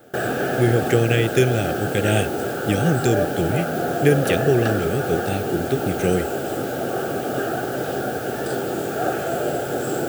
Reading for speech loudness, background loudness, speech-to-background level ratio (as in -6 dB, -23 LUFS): -22.0 LUFS, -24.5 LUFS, 2.5 dB